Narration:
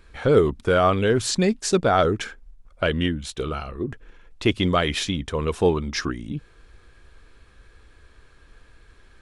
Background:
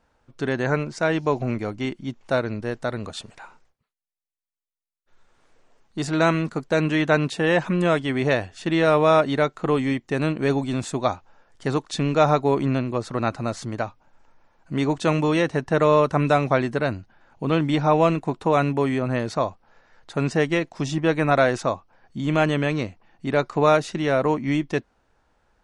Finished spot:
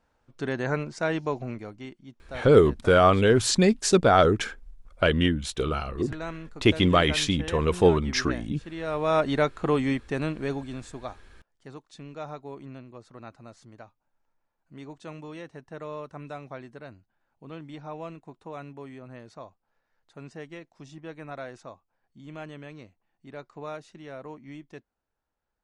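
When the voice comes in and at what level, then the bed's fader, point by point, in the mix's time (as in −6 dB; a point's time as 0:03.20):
2.20 s, +0.5 dB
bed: 0:01.15 −5 dB
0:02.10 −16.5 dB
0:08.75 −16.5 dB
0:09.28 −2.5 dB
0:09.93 −2.5 dB
0:11.52 −20 dB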